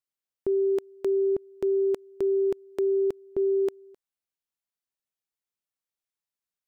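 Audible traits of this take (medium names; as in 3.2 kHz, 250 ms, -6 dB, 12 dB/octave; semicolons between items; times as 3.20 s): noise floor -92 dBFS; spectral tilt -1.5 dB/octave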